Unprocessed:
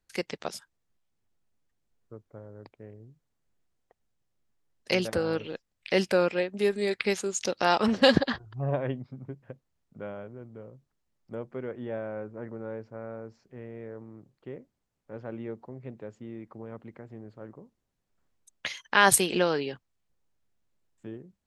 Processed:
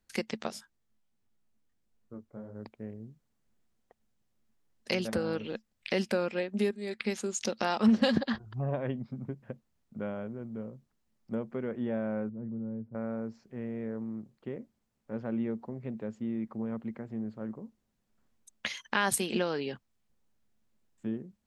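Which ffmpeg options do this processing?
ffmpeg -i in.wav -filter_complex "[0:a]asplit=3[link_01][link_02][link_03];[link_01]afade=type=out:start_time=0.47:duration=0.02[link_04];[link_02]flanger=delay=19:depth=4.8:speed=1.5,afade=type=in:start_time=0.47:duration=0.02,afade=type=out:start_time=2.54:duration=0.02[link_05];[link_03]afade=type=in:start_time=2.54:duration=0.02[link_06];[link_04][link_05][link_06]amix=inputs=3:normalize=0,asettb=1/sr,asplit=3[link_07][link_08][link_09];[link_07]atrim=end=12.294[link_10];[link_08]atrim=start=12.29:end=12.95,asetpts=PTS-STARTPTS,afade=type=in:duration=0.004:curve=qsin,afade=type=out:start_time=0.656:duration=0.004:curve=qsin,bandpass=frequency=120:width_type=q:width=1[link_11];[link_09]atrim=start=12.946[link_12];[link_10][link_11]acrossfade=duration=0.004:curve1=hsin:curve2=qsin[link_13];[link_13][link_12]acrossfade=duration=0.004:curve1=qsin:curve2=hsin,asplit=2[link_14][link_15];[link_14]atrim=end=6.71,asetpts=PTS-STARTPTS,afade=type=out:start_time=6.706:duration=0.004:curve=hsin:silence=0.199526[link_16];[link_15]atrim=start=6.71,asetpts=PTS-STARTPTS,afade=type=in:duration=0.86:silence=0.199526[link_17];[link_16][link_17]concat=n=2:v=0:a=1,acompressor=threshold=-34dB:ratio=2,equalizer=frequency=220:width=6.1:gain=11.5,volume=1.5dB" out.wav

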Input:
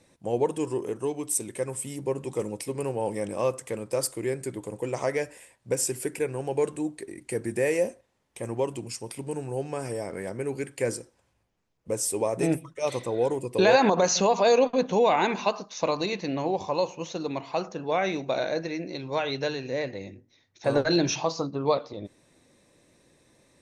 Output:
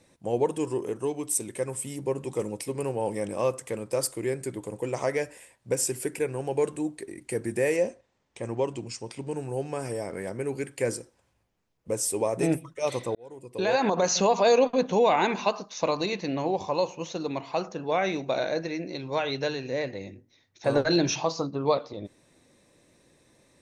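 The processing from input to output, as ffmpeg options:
ffmpeg -i in.wav -filter_complex "[0:a]asettb=1/sr,asplit=3[link_01][link_02][link_03];[link_01]atrim=end=7.764[link_04];[link_02]atrim=start=7.76:end=9.37,asetpts=PTS-STARTPTS,afade=type=in:duration=0.004:curve=qsin,afade=type=out:start_time=1.606:duration=0.004:curve=qsin,lowpass=frequency=7500:width=0.5412,lowpass=frequency=7500:width=1.3066[link_05];[link_03]atrim=start=9.366[link_06];[link_04][link_05]acrossfade=duration=0.004:curve1=hsin:curve2=qsin[link_07];[link_07][link_06]acrossfade=duration=0.004:curve1=qsin:curve2=hsin,asplit=2[link_08][link_09];[link_08]atrim=end=13.15,asetpts=PTS-STARTPTS,afade=type=out:start_time=13.146:duration=0.004:curve=hsin[link_10];[link_09]atrim=start=13.15,asetpts=PTS-STARTPTS,afade=type=in:duration=1.09[link_11];[link_10][link_11]concat=n=2:v=0:a=1" out.wav

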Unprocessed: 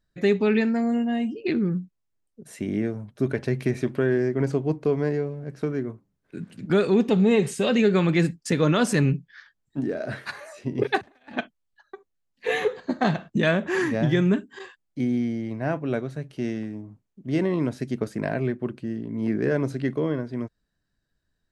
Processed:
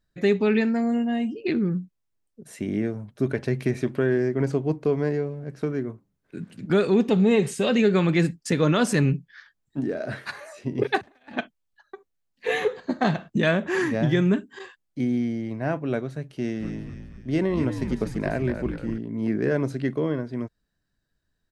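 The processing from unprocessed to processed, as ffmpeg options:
ffmpeg -i in.wav -filter_complex "[0:a]asplit=3[link_01][link_02][link_03];[link_01]afade=type=out:start_time=16.59:duration=0.02[link_04];[link_02]asplit=7[link_05][link_06][link_07][link_08][link_09][link_10][link_11];[link_06]adelay=239,afreqshift=-72,volume=-7.5dB[link_12];[link_07]adelay=478,afreqshift=-144,volume=-13.9dB[link_13];[link_08]adelay=717,afreqshift=-216,volume=-20.3dB[link_14];[link_09]adelay=956,afreqshift=-288,volume=-26.6dB[link_15];[link_10]adelay=1195,afreqshift=-360,volume=-33dB[link_16];[link_11]adelay=1434,afreqshift=-432,volume=-39.4dB[link_17];[link_05][link_12][link_13][link_14][link_15][link_16][link_17]amix=inputs=7:normalize=0,afade=type=in:start_time=16.59:duration=0.02,afade=type=out:start_time=18.97:duration=0.02[link_18];[link_03]afade=type=in:start_time=18.97:duration=0.02[link_19];[link_04][link_18][link_19]amix=inputs=3:normalize=0" out.wav

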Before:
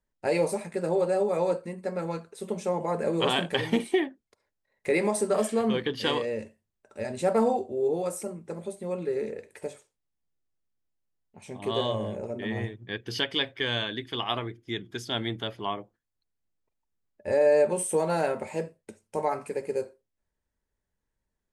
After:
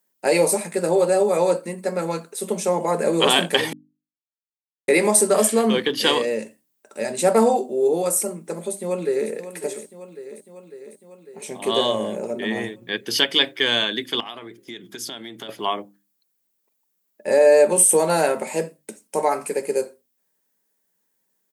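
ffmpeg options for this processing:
ffmpeg -i in.wav -filter_complex "[0:a]asplit=2[link_01][link_02];[link_02]afade=type=in:start_time=8.65:duration=0.01,afade=type=out:start_time=9.3:duration=0.01,aecho=0:1:550|1100|1650|2200|2750|3300|3850|4400|4950|5500:0.251189|0.175832|0.123082|0.0861577|0.0603104|0.0422173|0.0295521|0.0206865|0.0144805|0.0101364[link_03];[link_01][link_03]amix=inputs=2:normalize=0,asettb=1/sr,asplit=3[link_04][link_05][link_06];[link_04]atrim=end=14.204[link_07];[link_05]atrim=start=14.2:end=15.49,asetpts=PTS-STARTPTS,afade=type=in:duration=0.004:curve=qsin,afade=type=out:start_time=1.286:duration=0.004:curve=qsin,acompressor=threshold=-38dB:ratio=16:attack=3.2:release=140:knee=1:detection=peak[link_08];[link_06]atrim=start=15.486[link_09];[link_07][link_08]acrossfade=duration=0.004:curve1=hsin:curve2=qsin[link_10];[link_10][link_09]acrossfade=duration=0.004:curve1=qsin:curve2=hsin,asplit=3[link_11][link_12][link_13];[link_11]atrim=end=3.73,asetpts=PTS-STARTPTS,afade=type=out:start_time=3.726:duration=0.004:curve=hsin[link_14];[link_12]atrim=start=3.73:end=4.88,asetpts=PTS-STARTPTS,volume=0[link_15];[link_13]atrim=start=4.88,asetpts=PTS-STARTPTS,afade=type=in:duration=0.004:curve=hsin[link_16];[link_14][link_15][link_16]concat=n=3:v=0:a=1,highpass=frequency=170:width=0.5412,highpass=frequency=170:width=1.3066,aemphasis=mode=production:type=50fm,bandreject=frequency=50:width_type=h:width=6,bandreject=frequency=100:width_type=h:width=6,bandreject=frequency=150:width_type=h:width=6,bandreject=frequency=200:width_type=h:width=6,bandreject=frequency=250:width_type=h:width=6,bandreject=frequency=300:width_type=h:width=6,volume=7.5dB" out.wav

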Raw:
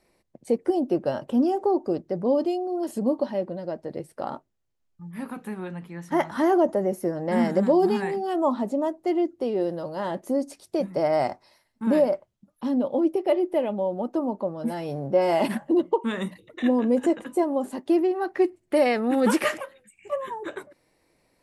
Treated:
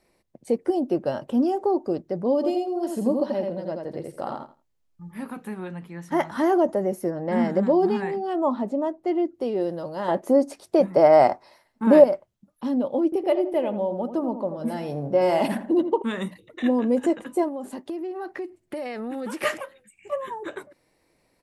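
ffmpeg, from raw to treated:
ffmpeg -i in.wav -filter_complex "[0:a]asplit=3[link_01][link_02][link_03];[link_01]afade=type=out:start_time=2.42:duration=0.02[link_04];[link_02]aecho=1:1:84|168|252:0.631|0.114|0.0204,afade=type=in:start_time=2.42:duration=0.02,afade=type=out:start_time=5.18:duration=0.02[link_05];[link_03]afade=type=in:start_time=5.18:duration=0.02[link_06];[link_04][link_05][link_06]amix=inputs=3:normalize=0,asettb=1/sr,asplit=3[link_07][link_08][link_09];[link_07]atrim=end=7.104[link_10];[link_08]atrim=start=7.1:end=9.34,asetpts=PTS-STARTPTS,afade=type=in:duration=0.004:curve=qsin,afade=type=out:start_time=2.236:duration=0.004:curve=qsin,aemphasis=mode=reproduction:type=50kf[link_11];[link_09]atrim=start=9.336[link_12];[link_10][link_11]acrossfade=duration=0.004:curve1=hsin:curve2=qsin[link_13];[link_13][link_12]acrossfade=duration=0.004:curve1=qsin:curve2=hsin,asettb=1/sr,asplit=3[link_14][link_15][link_16];[link_14]atrim=end=10.084[link_17];[link_15]atrim=start=10.08:end=12.04,asetpts=PTS-STARTPTS,afade=type=in:duration=0.004:curve=qsin,afade=type=out:start_time=1.956:duration=0.004:curve=qsin,equalizer=frequency=750:width=0.37:gain=8.5[link_18];[link_16]atrim=start=12.036[link_19];[link_17][link_18]acrossfade=duration=0.004:curve1=hsin:curve2=qsin[link_20];[link_20][link_19]acrossfade=duration=0.004:curve1=qsin:curve2=hsin,asettb=1/sr,asplit=3[link_21][link_22][link_23];[link_21]atrim=end=13.044[link_24];[link_22]atrim=start=13.04:end=16.02,asetpts=PTS-STARTPTS,afade=type=in:duration=0.004:curve=qsin,afade=type=out:start_time=2.976:duration=0.004:curve=qsin,asplit=2[link_25][link_26];[link_26]adelay=82,lowpass=frequency=1300:poles=1,volume=-9dB,asplit=2[link_27][link_28];[link_28]adelay=82,lowpass=frequency=1300:poles=1,volume=0.4,asplit=2[link_29][link_30];[link_30]adelay=82,lowpass=frequency=1300:poles=1,volume=0.4,asplit=2[link_31][link_32];[link_32]adelay=82,lowpass=frequency=1300:poles=1,volume=0.4[link_33];[link_25][link_27][link_29][link_31][link_33]amix=inputs=5:normalize=0,atrim=end_sample=131418[link_34];[link_23]atrim=start=16.016[link_35];[link_24][link_34]acrossfade=duration=0.004:curve1=hsin:curve2=qsin[link_36];[link_36][link_35]acrossfade=duration=0.004:curve1=qsin:curve2=hsin,asettb=1/sr,asplit=3[link_37][link_38][link_39];[link_37]atrim=end=17.484[link_40];[link_38]atrim=start=17.48:end=19.43,asetpts=PTS-STARTPTS,afade=type=in:duration=0.004:curve=qsin,afade=type=out:start_time=1.946:duration=0.004:curve=qsin,acompressor=threshold=-29dB:ratio=6:attack=3.2:release=140:knee=1:detection=peak[link_41];[link_39]atrim=start=19.426[link_42];[link_40][link_41]acrossfade=duration=0.004:curve1=hsin:curve2=qsin[link_43];[link_43][link_42]acrossfade=duration=0.004:curve1=qsin:curve2=hsin" out.wav

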